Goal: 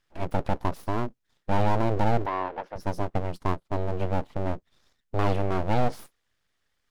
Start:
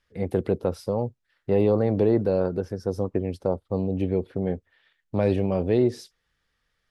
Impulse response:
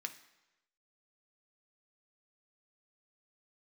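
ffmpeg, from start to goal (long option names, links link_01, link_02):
-filter_complex "[0:a]aeval=exprs='abs(val(0))':channel_layout=same,asettb=1/sr,asplit=3[link_01][link_02][link_03];[link_01]atrim=end=2.264[link_04];[link_02]atrim=start=2.26:end=2.76,asetpts=PTS-STARTPTS,afade=type=in:duration=0.004:curve=qsin,afade=type=out:start_time=0.496:duration=0.004:curve=qsin,acrossover=split=320 3600:gain=0.0891 1 0.0891[link_05][link_06][link_07];[link_05][link_06][link_07]amix=inputs=3:normalize=0[link_08];[link_03]atrim=start=2.756[link_09];[link_04][link_08]acrossfade=duration=0.004:curve1=hsin:curve2=qsin[link_10];[link_10][link_09]acrossfade=duration=0.004:curve1=qsin:curve2=hsin"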